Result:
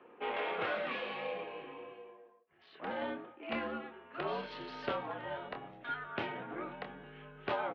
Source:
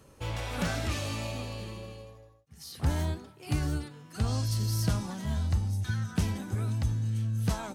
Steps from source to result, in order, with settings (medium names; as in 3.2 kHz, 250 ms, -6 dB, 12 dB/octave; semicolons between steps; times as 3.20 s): local Wiener filter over 9 samples; 0.53–3.02 s: flange 1.3 Hz, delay 2.9 ms, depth 6.2 ms, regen -45%; doubling 26 ms -8 dB; mistuned SSB -72 Hz 390–3300 Hz; trim +4 dB